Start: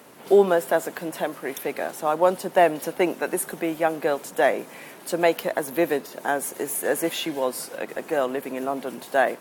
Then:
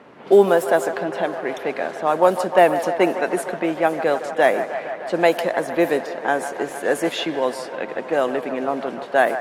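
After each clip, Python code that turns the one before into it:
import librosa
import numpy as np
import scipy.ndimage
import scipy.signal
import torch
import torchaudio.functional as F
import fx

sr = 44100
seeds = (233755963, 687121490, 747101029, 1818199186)

y = fx.env_lowpass(x, sr, base_hz=2400.0, full_db=-15.5)
y = fx.echo_wet_bandpass(y, sr, ms=153, feedback_pct=79, hz=970.0, wet_db=-10)
y = y * 10.0 ** (3.5 / 20.0)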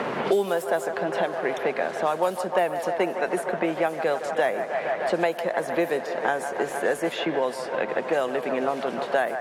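y = fx.peak_eq(x, sr, hz=290.0, db=-6.5, octaves=0.31)
y = fx.band_squash(y, sr, depth_pct=100)
y = y * 10.0 ** (-5.5 / 20.0)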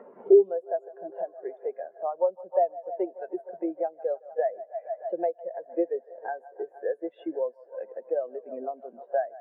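y = scipy.signal.sosfilt(scipy.signal.butter(2, 140.0, 'highpass', fs=sr, output='sos'), x)
y = fx.spectral_expand(y, sr, expansion=2.5)
y = y * 10.0 ** (1.5 / 20.0)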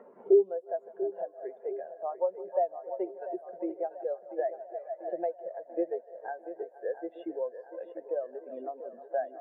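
y = fx.echo_feedback(x, sr, ms=691, feedback_pct=53, wet_db=-12.0)
y = y * 10.0 ** (-4.5 / 20.0)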